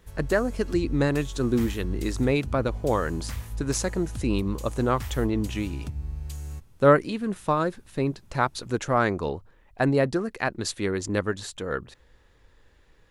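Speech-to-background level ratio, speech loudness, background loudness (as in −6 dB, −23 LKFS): 10.0 dB, −26.5 LKFS, −36.5 LKFS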